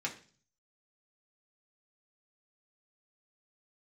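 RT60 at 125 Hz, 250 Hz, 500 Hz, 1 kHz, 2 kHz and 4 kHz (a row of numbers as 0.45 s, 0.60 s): 0.80 s, 0.55 s, 0.45 s, 0.40 s, 0.40 s, 0.50 s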